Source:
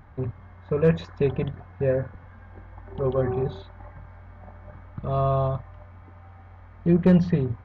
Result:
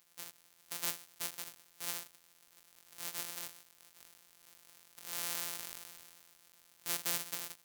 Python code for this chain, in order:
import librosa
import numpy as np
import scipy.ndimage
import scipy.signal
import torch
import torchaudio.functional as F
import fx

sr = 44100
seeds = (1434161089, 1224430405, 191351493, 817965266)

y = np.r_[np.sort(x[:len(x) // 256 * 256].reshape(-1, 256), axis=1).ravel(), x[len(x) // 256 * 256:]]
y = np.diff(y, prepend=0.0)
y = fx.sustainer(y, sr, db_per_s=28.0, at=(3.98, 6.92), fade=0.02)
y = y * 10.0 ** (-5.5 / 20.0)